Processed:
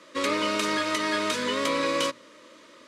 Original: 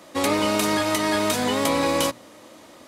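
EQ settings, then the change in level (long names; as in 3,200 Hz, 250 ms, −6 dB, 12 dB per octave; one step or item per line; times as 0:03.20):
high-pass filter 500 Hz 6 dB per octave
Butterworth band-reject 770 Hz, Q 2.1
high-frequency loss of the air 73 metres
0.0 dB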